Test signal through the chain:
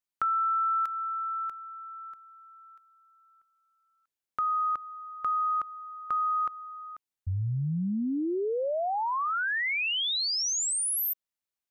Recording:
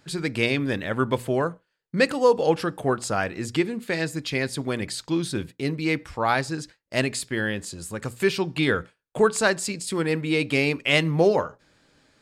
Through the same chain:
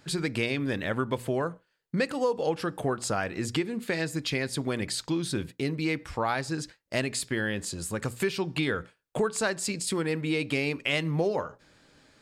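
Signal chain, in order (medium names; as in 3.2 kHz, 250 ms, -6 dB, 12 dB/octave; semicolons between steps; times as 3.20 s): compression 3:1, threshold -28 dBFS; trim +1.5 dB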